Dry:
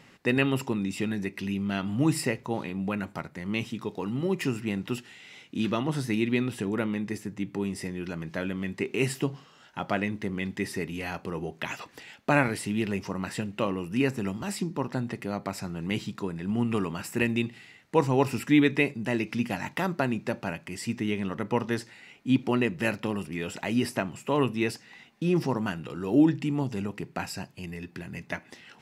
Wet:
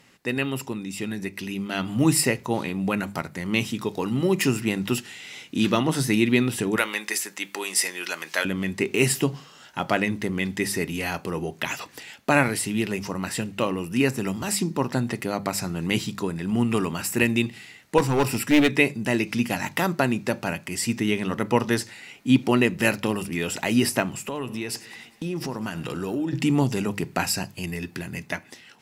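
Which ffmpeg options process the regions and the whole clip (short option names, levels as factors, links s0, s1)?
-filter_complex "[0:a]asettb=1/sr,asplit=3[s0][s1][s2];[s0]atrim=end=6.764[s3];[s1]atrim=start=6.76:end=8.45,asetpts=PTS-STARTPTS,afade=t=in:d=0.004:c=qsin,afade=t=out:st=1.686:d=0.004:c=qsin,highpass=400,tiltshelf=f=650:g=-8[s4];[s2]atrim=start=8.446[s5];[s3][s4]acrossfade=d=0.004:c1=hsin:c2=qsin[s6];[s6][s5]acrossfade=d=0.004:c1=qsin:c2=hsin,asettb=1/sr,asplit=3[s7][s8][s9];[s7]atrim=end=17.984[s10];[s8]atrim=start=17.98:end=18.74,asetpts=PTS-STARTPTS,afade=t=in:d=0.004:c=qsin,afade=t=out:st=0.756:d=0.004:c=qsin,bandreject=f=6500:w=9.3,aeval=exprs='clip(val(0),-1,0.0794)':c=same[s11];[s9]atrim=start=18.736[s12];[s10][s11]acrossfade=d=0.004:c1=hsin:c2=qsin[s13];[s13][s12]acrossfade=d=0.004:c1=qsin:c2=hsin,asettb=1/sr,asplit=3[s14][s15][s16];[s14]atrim=end=24.244[s17];[s15]atrim=start=24.24:end=26.33,asetpts=PTS-STARTPTS,afade=t=in:d=0.004:c=qsin,afade=t=out:st=2.086:d=0.004:c=qsin,acompressor=threshold=0.0224:ratio=5:attack=3.2:release=140:knee=1:detection=peak,aecho=1:1:101|202|303|404|505:0.112|0.0673|0.0404|0.0242|0.0145,atrim=end_sample=92169[s18];[s16]atrim=start=26.326[s19];[s17][s18]acrossfade=d=0.004:c1=hsin:c2=qsin[s20];[s20][s19]acrossfade=d=0.004:c1=qsin:c2=hsin,aemphasis=mode=production:type=cd,bandreject=f=50:t=h:w=6,bandreject=f=100:t=h:w=6,bandreject=f=150:t=h:w=6,bandreject=f=200:t=h:w=6,dynaudnorm=f=930:g=3:m=3.55,volume=0.75"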